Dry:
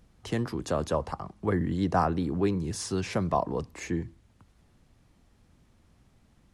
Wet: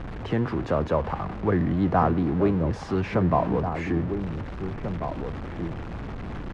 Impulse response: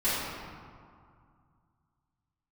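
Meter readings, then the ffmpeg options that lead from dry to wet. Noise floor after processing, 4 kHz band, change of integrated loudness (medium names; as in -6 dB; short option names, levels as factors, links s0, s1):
-35 dBFS, -2.5 dB, +3.5 dB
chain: -filter_complex "[0:a]aeval=exprs='val(0)+0.5*0.0282*sgn(val(0))':c=same,lowpass=1900,asplit=2[s0][s1];[s1]adelay=1691,volume=0.447,highshelf=f=4000:g=-38[s2];[s0][s2]amix=inputs=2:normalize=0,volume=1.33"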